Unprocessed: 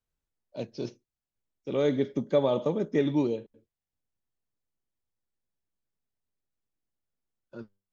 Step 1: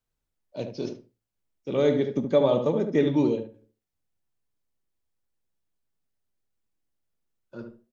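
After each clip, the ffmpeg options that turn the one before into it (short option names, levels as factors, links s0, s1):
-filter_complex "[0:a]flanger=delay=6.4:depth=9.8:regen=-76:speed=0.33:shape=triangular,asplit=2[s0][s1];[s1]adelay=73,lowpass=f=1300:p=1,volume=0.501,asplit=2[s2][s3];[s3]adelay=73,lowpass=f=1300:p=1,volume=0.22,asplit=2[s4][s5];[s5]adelay=73,lowpass=f=1300:p=1,volume=0.22[s6];[s2][s4][s6]amix=inputs=3:normalize=0[s7];[s0][s7]amix=inputs=2:normalize=0,volume=2.24"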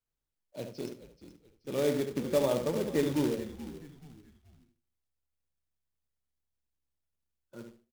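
-filter_complex "[0:a]acrusher=bits=3:mode=log:mix=0:aa=0.000001,asplit=4[s0][s1][s2][s3];[s1]adelay=430,afreqshift=-69,volume=0.2[s4];[s2]adelay=860,afreqshift=-138,volume=0.0716[s5];[s3]adelay=1290,afreqshift=-207,volume=0.026[s6];[s0][s4][s5][s6]amix=inputs=4:normalize=0,volume=0.447"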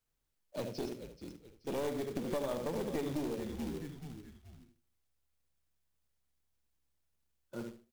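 -af "acompressor=threshold=0.0141:ratio=5,aeval=exprs='clip(val(0),-1,0.00944)':c=same,volume=1.78"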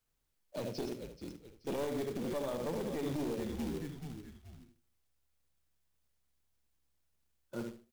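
-af "alimiter=level_in=1.88:limit=0.0631:level=0:latency=1:release=42,volume=0.531,volume=1.26"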